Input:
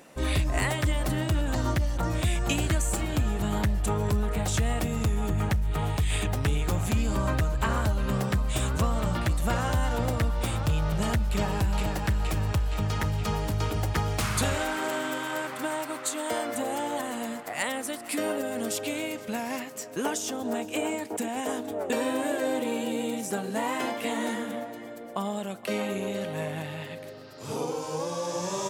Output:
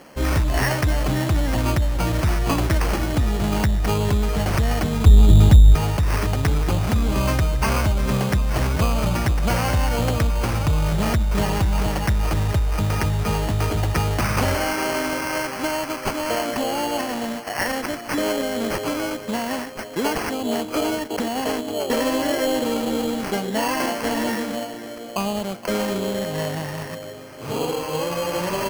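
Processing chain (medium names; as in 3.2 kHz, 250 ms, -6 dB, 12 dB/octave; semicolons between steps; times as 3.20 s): 5.06–5.75 s: tilt EQ -3.5 dB/octave; sample-and-hold 12×; in parallel at -3 dB: hard clipper -23 dBFS, distortion -4 dB; on the sum: trim +2 dB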